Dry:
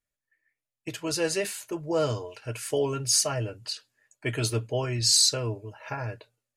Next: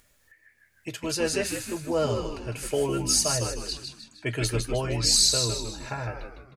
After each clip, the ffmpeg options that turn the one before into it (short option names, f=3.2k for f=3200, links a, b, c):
-filter_complex "[0:a]asplit=6[a][b][c][d][e][f];[b]adelay=155,afreqshift=-85,volume=-5.5dB[g];[c]adelay=310,afreqshift=-170,volume=-13dB[h];[d]adelay=465,afreqshift=-255,volume=-20.6dB[i];[e]adelay=620,afreqshift=-340,volume=-28.1dB[j];[f]adelay=775,afreqshift=-425,volume=-35.6dB[k];[a][g][h][i][j][k]amix=inputs=6:normalize=0,acompressor=mode=upward:threshold=-44dB:ratio=2.5"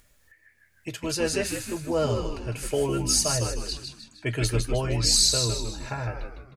-af "lowshelf=f=110:g=6"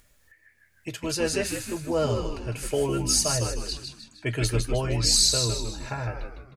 -af anull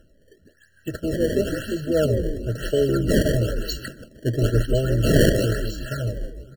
-filter_complex "[0:a]acrossover=split=700[a][b];[b]acrusher=samples=19:mix=1:aa=0.000001:lfo=1:lforange=30.4:lforate=1[c];[a][c]amix=inputs=2:normalize=0,afftfilt=real='re*eq(mod(floor(b*sr/1024/660),2),0)':imag='im*eq(mod(floor(b*sr/1024/660),2),0)':win_size=1024:overlap=0.75,volume=5.5dB"